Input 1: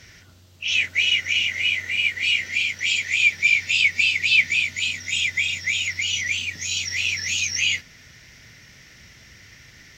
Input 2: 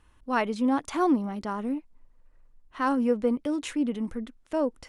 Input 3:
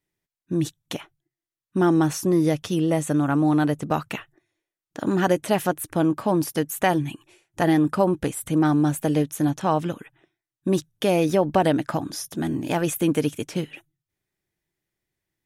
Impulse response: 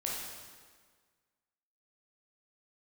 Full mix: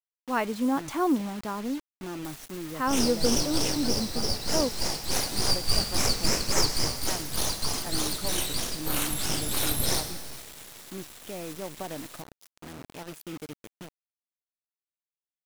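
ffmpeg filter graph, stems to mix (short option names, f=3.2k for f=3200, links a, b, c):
-filter_complex "[0:a]acompressor=mode=upward:threshold=-37dB:ratio=2.5,crystalizer=i=4.5:c=0,aeval=exprs='abs(val(0))':c=same,adelay=2250,volume=-13dB,asplit=2[a][b];[b]volume=-5.5dB[c];[1:a]volume=-1.5dB[d];[2:a]acrusher=bits=3:mode=log:mix=0:aa=0.000001,adelay=250,volume=-18dB[e];[3:a]atrim=start_sample=2205[f];[c][f]afir=irnorm=-1:irlink=0[g];[a][d][e][g]amix=inputs=4:normalize=0,acrusher=bits=6:mix=0:aa=0.000001"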